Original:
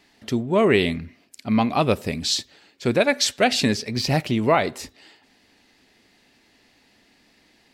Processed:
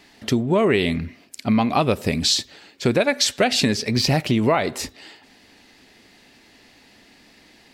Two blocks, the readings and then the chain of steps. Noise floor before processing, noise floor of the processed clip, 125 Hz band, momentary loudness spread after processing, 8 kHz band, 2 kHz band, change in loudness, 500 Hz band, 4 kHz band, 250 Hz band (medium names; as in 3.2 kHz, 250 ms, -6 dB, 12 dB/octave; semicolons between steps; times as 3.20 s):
-60 dBFS, -53 dBFS, +2.5 dB, 11 LU, +3.0 dB, 0.0 dB, +1.0 dB, 0.0 dB, +3.0 dB, +2.0 dB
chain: compression 4:1, threshold -23 dBFS, peak gain reduction 9 dB; trim +7 dB